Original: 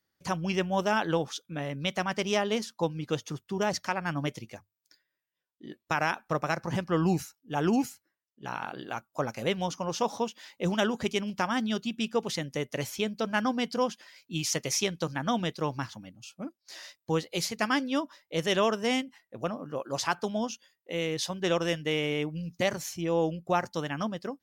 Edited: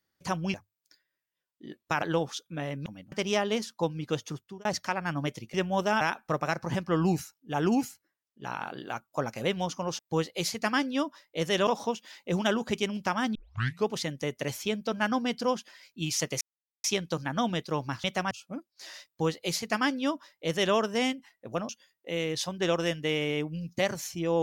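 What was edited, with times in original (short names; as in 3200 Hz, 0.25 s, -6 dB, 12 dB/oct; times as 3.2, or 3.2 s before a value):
0.54–1.01 swap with 4.54–6.02
1.85–2.12 swap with 15.94–16.2
3.3–3.65 fade out
11.68 tape start 0.53 s
14.74 insert silence 0.43 s
16.96–18.64 copy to 10
19.58–20.51 cut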